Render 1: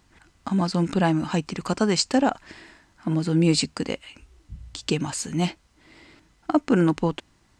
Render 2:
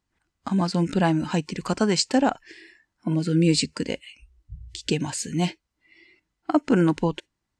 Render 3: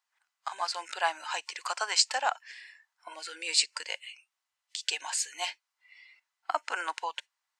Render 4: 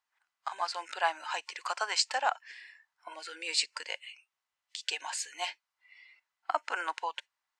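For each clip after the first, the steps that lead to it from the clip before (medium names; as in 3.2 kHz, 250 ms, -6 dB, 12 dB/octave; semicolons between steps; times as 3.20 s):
spectral noise reduction 19 dB
inverse Chebyshev high-pass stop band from 180 Hz, stop band 70 dB
treble shelf 4.6 kHz -8 dB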